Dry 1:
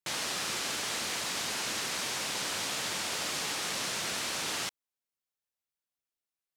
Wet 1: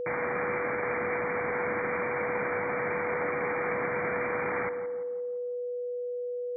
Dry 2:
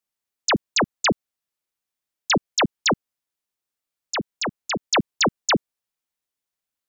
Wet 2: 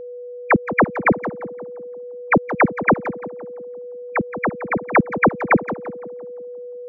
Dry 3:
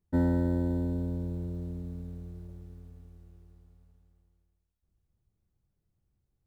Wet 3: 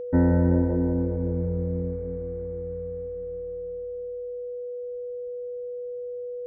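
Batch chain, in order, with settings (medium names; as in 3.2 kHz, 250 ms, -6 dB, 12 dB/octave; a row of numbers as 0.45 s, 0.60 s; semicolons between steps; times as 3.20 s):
brick-wall FIR low-pass 2.4 kHz; tape echo 171 ms, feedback 56%, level -8 dB, low-pass 1.2 kHz; whistle 490 Hz -37 dBFS; trim +6 dB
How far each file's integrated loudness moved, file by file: +1.0 LU, +3.5 LU, +3.5 LU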